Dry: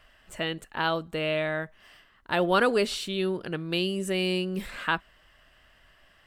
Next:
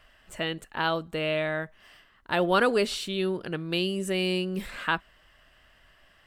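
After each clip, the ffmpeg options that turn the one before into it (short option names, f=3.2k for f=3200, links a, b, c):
-af anull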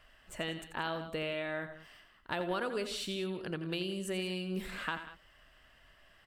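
-filter_complex "[0:a]acompressor=threshold=-30dB:ratio=4,asplit=2[a][b];[b]aecho=0:1:86|89|164|190:0.282|0.1|0.119|0.158[c];[a][c]amix=inputs=2:normalize=0,volume=-3.5dB"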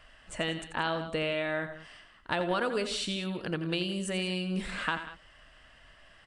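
-af "bandreject=f=380:w=12,aresample=22050,aresample=44100,volume=5.5dB"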